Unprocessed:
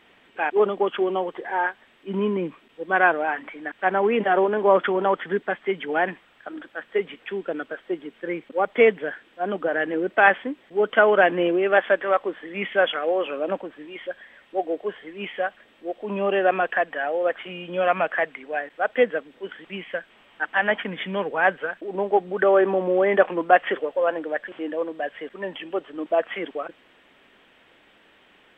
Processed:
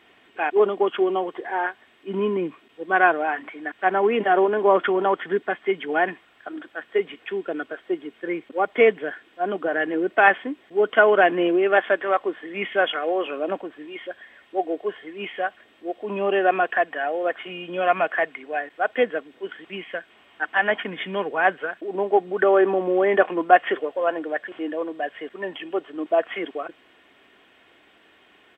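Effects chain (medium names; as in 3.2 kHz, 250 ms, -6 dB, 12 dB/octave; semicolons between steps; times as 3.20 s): high-pass 64 Hz; comb 2.8 ms, depth 31%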